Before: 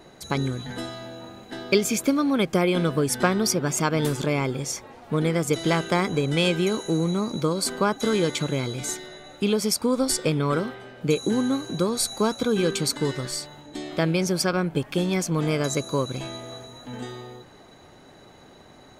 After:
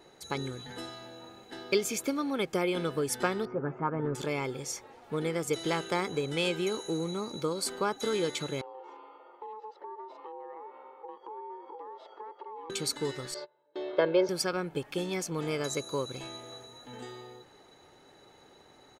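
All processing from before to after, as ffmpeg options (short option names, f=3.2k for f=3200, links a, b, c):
-filter_complex "[0:a]asettb=1/sr,asplit=3[a][b][c];[a]atrim=end=3.454[d];[b]atrim=start=3.45:end=4.15,asetpts=PTS-STARTPTS,afade=t=in:d=0.004:c=qsin,afade=t=out:st=0.696:d=0.004:c=qsin,lowpass=f=1.5k:w=0.5412,lowpass=f=1.5k:w=1.3066,aecho=1:1:7.4:0.49,atrim=end_sample=30870[e];[c]atrim=start=4.146[f];[d][e]acrossfade=d=0.004:c1=hsin:c2=qsin[g];[g][f]acrossfade=d=0.004:c1=qsin:c2=hsin,asettb=1/sr,asplit=3[h][i][j];[h]atrim=end=8.614[k];[i]atrim=start=8.61:end=12.7,asetpts=PTS-STARTPTS,afade=t=in:d=0.004:c=qsin,afade=t=out:st=4.086:d=0.004:c=qsin,aeval=exprs='val(0)*sin(2*PI*650*n/s)':c=same,highpass=f=350:w=0.5412,highpass=f=350:w=1.3066,equalizer=f=350:t=q:w=4:g=6,equalizer=f=520:t=q:w=4:g=8,equalizer=f=860:t=q:w=4:g=7,equalizer=f=1.6k:t=q:w=4:g=-9,equalizer=f=2.4k:t=q:w=4:g=-10,lowpass=f=2.4k:w=0.5412,lowpass=f=2.4k:w=1.3066,acompressor=threshold=-37dB:ratio=4:attack=3.2:release=140:knee=1:detection=peak[l];[j]atrim=start=12.696[m];[k][l]acrossfade=d=0.004:c1=hsin:c2=qsin[n];[n][m]acrossfade=d=0.004:c1=qsin:c2=hsin,asettb=1/sr,asplit=3[o][p][q];[o]atrim=end=13.344[r];[p]atrim=start=13.34:end=14.29,asetpts=PTS-STARTPTS,afade=t=in:d=0.004:c=qsin,afade=t=out:st=0.946:d=0.004:c=qsin,agate=range=-24dB:threshold=-38dB:ratio=16:release=100:detection=peak,highpass=f=180:w=0.5412,highpass=f=180:w=1.3066,equalizer=f=210:t=q:w=4:g=-6,equalizer=f=370:t=q:w=4:g=8,equalizer=f=580:t=q:w=4:g=9,equalizer=f=880:t=q:w=4:g=7,equalizer=f=1.4k:t=q:w=4:g=5,equalizer=f=2.4k:t=q:w=4:g=-6,lowpass=f=3.8k:w=0.5412,lowpass=f=3.8k:w=1.3066,aecho=1:1:1.9:0.66,atrim=end_sample=41895[s];[q]atrim=start=14.286[t];[r][s]acrossfade=d=0.004:c1=hsin:c2=qsin[u];[u][t]acrossfade=d=0.004:c1=qsin:c2=hsin,lowshelf=f=140:g=-9,aecho=1:1:2.3:0.3,volume=-7dB"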